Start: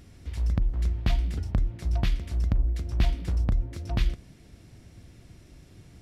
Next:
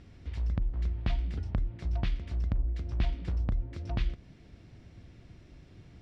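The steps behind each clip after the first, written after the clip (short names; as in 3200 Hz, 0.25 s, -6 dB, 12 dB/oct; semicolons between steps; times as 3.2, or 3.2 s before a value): LPF 4200 Hz 12 dB/oct; in parallel at -1 dB: compressor, threshold -31 dBFS, peak gain reduction 13 dB; on the sum: gain -7.5 dB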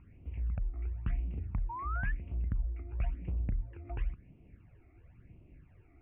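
phaser stages 12, 0.97 Hz, lowest notch 160–1700 Hz; painted sound rise, 1.69–2.12, 900–1800 Hz -36 dBFS; elliptic low-pass 2600 Hz, stop band 40 dB; gain -3.5 dB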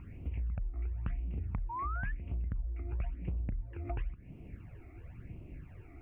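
compressor 5:1, threshold -43 dBFS, peak gain reduction 14 dB; gain +9 dB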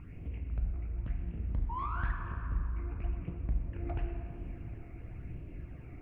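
soft clip -29 dBFS, distortion -21 dB; shoebox room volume 170 m³, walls hard, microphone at 0.39 m; Doppler distortion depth 0.29 ms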